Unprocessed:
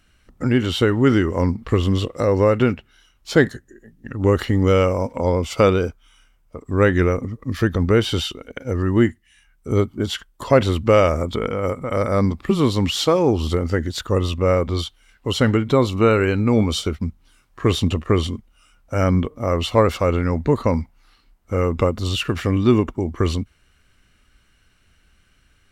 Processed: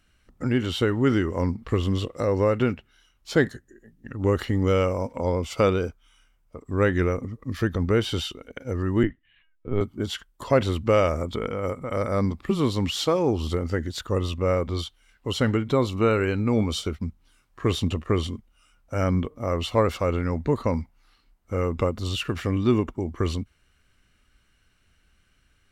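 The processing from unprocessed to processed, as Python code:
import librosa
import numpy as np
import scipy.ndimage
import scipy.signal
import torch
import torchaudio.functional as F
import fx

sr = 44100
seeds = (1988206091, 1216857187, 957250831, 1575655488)

y = fx.lpc_vocoder(x, sr, seeds[0], excitation='pitch_kept', order=16, at=(9.03, 9.81))
y = F.gain(torch.from_numpy(y), -5.5).numpy()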